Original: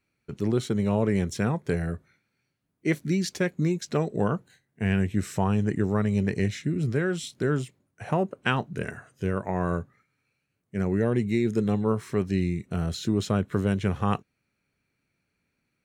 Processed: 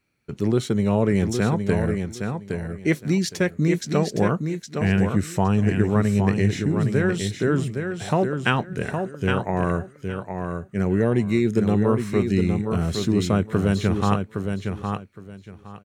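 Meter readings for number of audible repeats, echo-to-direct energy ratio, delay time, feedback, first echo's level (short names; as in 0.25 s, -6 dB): 3, -6.0 dB, 0.814 s, 21%, -6.0 dB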